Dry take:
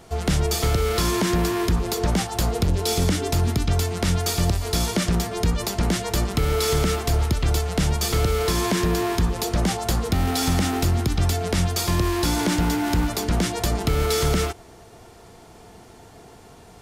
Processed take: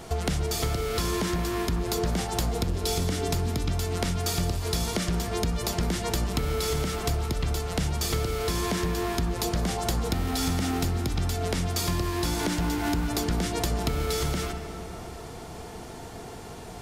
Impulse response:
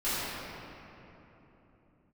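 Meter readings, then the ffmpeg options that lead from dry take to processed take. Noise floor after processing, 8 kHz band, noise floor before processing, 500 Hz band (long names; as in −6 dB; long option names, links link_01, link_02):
−41 dBFS, −5.0 dB, −47 dBFS, −5.0 dB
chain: -filter_complex "[0:a]bandreject=frequency=98.75:width_type=h:width=4,bandreject=frequency=197.5:width_type=h:width=4,bandreject=frequency=296.25:width_type=h:width=4,bandreject=frequency=395:width_type=h:width=4,bandreject=frequency=493.75:width_type=h:width=4,bandreject=frequency=592.5:width_type=h:width=4,bandreject=frequency=691.25:width_type=h:width=4,bandreject=frequency=790:width_type=h:width=4,bandreject=frequency=888.75:width_type=h:width=4,bandreject=frequency=987.5:width_type=h:width=4,bandreject=frequency=1086.25:width_type=h:width=4,bandreject=frequency=1185:width_type=h:width=4,bandreject=frequency=1283.75:width_type=h:width=4,bandreject=frequency=1382.5:width_type=h:width=4,bandreject=frequency=1481.25:width_type=h:width=4,bandreject=frequency=1580:width_type=h:width=4,bandreject=frequency=1678.75:width_type=h:width=4,bandreject=frequency=1777.5:width_type=h:width=4,bandreject=frequency=1876.25:width_type=h:width=4,bandreject=frequency=1975:width_type=h:width=4,bandreject=frequency=2073.75:width_type=h:width=4,bandreject=frequency=2172.5:width_type=h:width=4,bandreject=frequency=2271.25:width_type=h:width=4,bandreject=frequency=2370:width_type=h:width=4,bandreject=frequency=2468.75:width_type=h:width=4,bandreject=frequency=2567.5:width_type=h:width=4,bandreject=frequency=2666.25:width_type=h:width=4,bandreject=frequency=2765:width_type=h:width=4,bandreject=frequency=2863.75:width_type=h:width=4,bandreject=frequency=2962.5:width_type=h:width=4,bandreject=frequency=3061.25:width_type=h:width=4,acompressor=threshold=-31dB:ratio=6,asplit=2[link_01][link_02];[1:a]atrim=start_sample=2205,adelay=130[link_03];[link_02][link_03]afir=irnorm=-1:irlink=0,volume=-21.5dB[link_04];[link_01][link_04]amix=inputs=2:normalize=0,volume=5.5dB"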